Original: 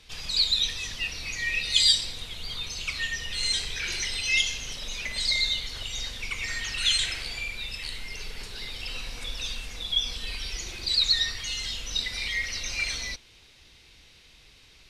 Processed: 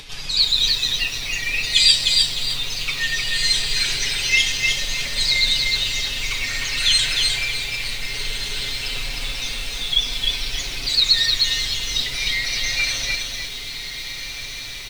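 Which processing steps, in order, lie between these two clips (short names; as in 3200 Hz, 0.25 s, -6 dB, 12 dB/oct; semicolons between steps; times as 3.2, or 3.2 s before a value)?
comb 7.2 ms, depth 81%; upward compressor, threshold -36 dBFS; on a send: diffused feedback echo 1.596 s, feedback 59%, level -10 dB; on the sum: lo-fi delay 0.306 s, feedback 35%, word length 7-bit, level -3 dB; gain +3.5 dB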